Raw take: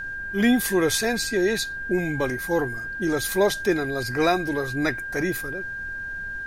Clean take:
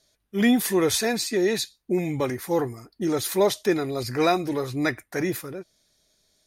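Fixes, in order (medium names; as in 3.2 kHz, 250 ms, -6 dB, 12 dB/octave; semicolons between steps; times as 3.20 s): band-stop 1.6 kHz, Q 30; noise print and reduce 30 dB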